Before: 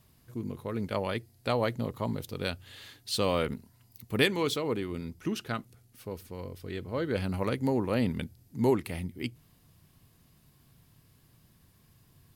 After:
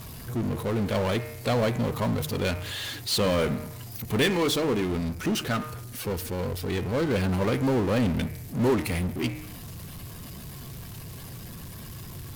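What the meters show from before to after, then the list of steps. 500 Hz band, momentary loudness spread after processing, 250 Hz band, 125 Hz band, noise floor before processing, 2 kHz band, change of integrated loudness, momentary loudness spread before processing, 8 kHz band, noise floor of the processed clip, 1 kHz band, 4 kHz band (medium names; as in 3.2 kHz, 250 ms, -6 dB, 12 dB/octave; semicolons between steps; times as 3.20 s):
+4.5 dB, 16 LU, +5.5 dB, +7.0 dB, -63 dBFS, +4.5 dB, +5.0 dB, 14 LU, +9.0 dB, -41 dBFS, +4.0 dB, +5.5 dB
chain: coarse spectral quantiser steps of 15 dB; de-hum 153.2 Hz, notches 17; power-law waveshaper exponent 0.5; trim -2 dB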